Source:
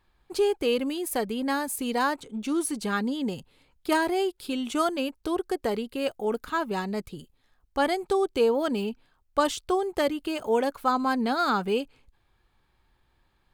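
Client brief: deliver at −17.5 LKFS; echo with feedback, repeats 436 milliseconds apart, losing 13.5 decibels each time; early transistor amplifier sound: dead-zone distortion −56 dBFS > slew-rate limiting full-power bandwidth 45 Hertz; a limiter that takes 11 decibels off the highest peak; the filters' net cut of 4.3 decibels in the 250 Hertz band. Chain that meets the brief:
parametric band 250 Hz −5.5 dB
brickwall limiter −22 dBFS
repeating echo 436 ms, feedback 21%, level −13.5 dB
dead-zone distortion −56 dBFS
slew-rate limiting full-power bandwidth 45 Hz
level +15.5 dB

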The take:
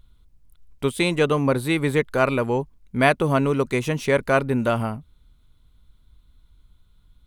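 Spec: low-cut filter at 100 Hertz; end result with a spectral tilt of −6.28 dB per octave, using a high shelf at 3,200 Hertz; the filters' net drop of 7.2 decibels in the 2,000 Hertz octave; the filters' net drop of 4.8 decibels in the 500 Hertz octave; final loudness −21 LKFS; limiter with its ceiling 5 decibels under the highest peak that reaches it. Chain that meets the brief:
high-pass filter 100 Hz
parametric band 500 Hz −5.5 dB
parametric band 2,000 Hz −8 dB
high-shelf EQ 3,200 Hz −4 dB
level +6 dB
brickwall limiter −8.5 dBFS

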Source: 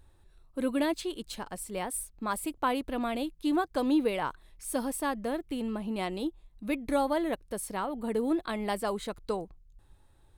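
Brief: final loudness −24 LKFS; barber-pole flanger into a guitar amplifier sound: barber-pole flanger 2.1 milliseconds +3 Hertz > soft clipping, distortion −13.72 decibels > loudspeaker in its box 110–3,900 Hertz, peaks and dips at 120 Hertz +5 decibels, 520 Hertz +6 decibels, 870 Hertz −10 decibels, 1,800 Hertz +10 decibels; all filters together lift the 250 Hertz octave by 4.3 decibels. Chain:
parametric band 250 Hz +5 dB
barber-pole flanger 2.1 ms +3 Hz
soft clipping −24.5 dBFS
loudspeaker in its box 110–3,900 Hz, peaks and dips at 120 Hz +5 dB, 520 Hz +6 dB, 870 Hz −10 dB, 1,800 Hz +10 dB
level +10.5 dB

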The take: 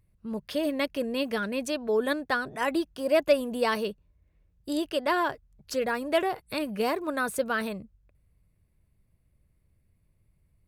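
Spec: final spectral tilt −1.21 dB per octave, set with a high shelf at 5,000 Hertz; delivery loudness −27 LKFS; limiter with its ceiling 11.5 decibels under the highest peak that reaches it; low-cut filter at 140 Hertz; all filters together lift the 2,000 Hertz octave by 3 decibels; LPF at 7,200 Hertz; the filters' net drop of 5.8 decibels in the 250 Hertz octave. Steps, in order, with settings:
high-pass filter 140 Hz
low-pass filter 7,200 Hz
parametric band 250 Hz −7 dB
parametric band 2,000 Hz +5 dB
high-shelf EQ 5,000 Hz −6 dB
level +6.5 dB
brickwall limiter −16 dBFS

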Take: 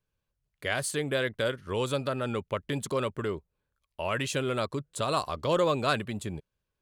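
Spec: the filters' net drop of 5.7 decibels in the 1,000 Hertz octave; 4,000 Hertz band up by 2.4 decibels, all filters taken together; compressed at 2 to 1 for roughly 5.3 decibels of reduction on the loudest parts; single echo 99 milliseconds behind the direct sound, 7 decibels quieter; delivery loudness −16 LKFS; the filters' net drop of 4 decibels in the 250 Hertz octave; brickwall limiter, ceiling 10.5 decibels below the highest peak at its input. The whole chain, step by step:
parametric band 250 Hz −5 dB
parametric band 1,000 Hz −7.5 dB
parametric band 4,000 Hz +3.5 dB
downward compressor 2 to 1, threshold −34 dBFS
brickwall limiter −29.5 dBFS
single-tap delay 99 ms −7 dB
level +23.5 dB

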